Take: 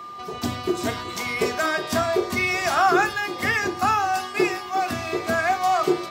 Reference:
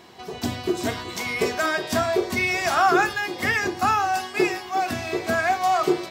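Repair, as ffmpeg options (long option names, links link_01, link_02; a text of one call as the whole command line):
ffmpeg -i in.wav -af "bandreject=frequency=1200:width=30" out.wav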